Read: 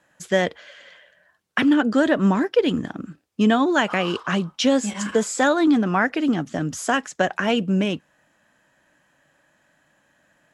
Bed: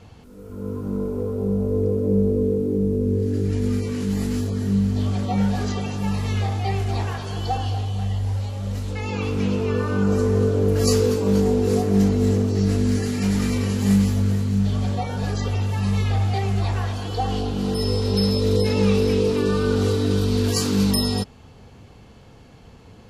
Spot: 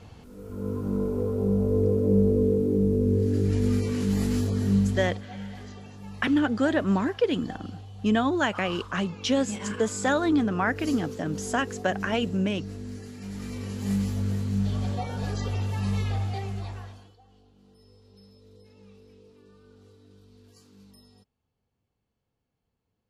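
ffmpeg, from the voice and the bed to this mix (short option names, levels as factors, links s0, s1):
-filter_complex "[0:a]adelay=4650,volume=0.531[s0];[1:a]volume=3.35,afade=t=out:st=4.75:d=0.48:silence=0.158489,afade=t=in:st=13.24:d=1.34:silence=0.251189,afade=t=out:st=15.94:d=1.23:silence=0.0354813[s1];[s0][s1]amix=inputs=2:normalize=0"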